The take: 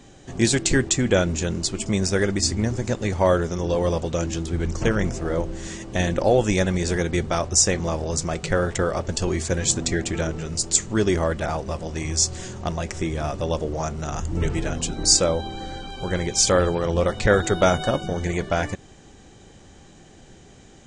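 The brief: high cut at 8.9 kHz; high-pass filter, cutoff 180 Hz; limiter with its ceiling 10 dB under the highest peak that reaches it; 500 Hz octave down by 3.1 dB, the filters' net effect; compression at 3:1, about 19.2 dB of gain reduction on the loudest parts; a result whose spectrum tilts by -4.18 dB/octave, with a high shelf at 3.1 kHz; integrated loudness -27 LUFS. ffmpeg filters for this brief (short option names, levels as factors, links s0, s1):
-af "highpass=180,lowpass=8900,equalizer=f=500:t=o:g=-3.5,highshelf=f=3100:g=-5,acompressor=threshold=0.00708:ratio=3,volume=7.94,alimiter=limit=0.178:level=0:latency=1"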